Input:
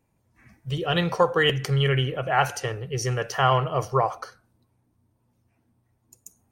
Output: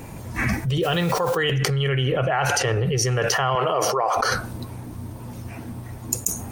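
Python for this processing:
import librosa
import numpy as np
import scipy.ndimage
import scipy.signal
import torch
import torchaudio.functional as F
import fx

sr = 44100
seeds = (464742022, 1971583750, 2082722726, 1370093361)

y = fx.quant_dither(x, sr, seeds[0], bits=8, dither='triangular', at=(0.82, 1.36), fade=0.02)
y = fx.high_shelf(y, sr, hz=10000.0, db=-9.0, at=(2.12, 2.85))
y = fx.highpass(y, sr, hz=310.0, slope=12, at=(3.55, 4.17))
y = fx.env_flatten(y, sr, amount_pct=100)
y = y * 10.0 ** (-6.5 / 20.0)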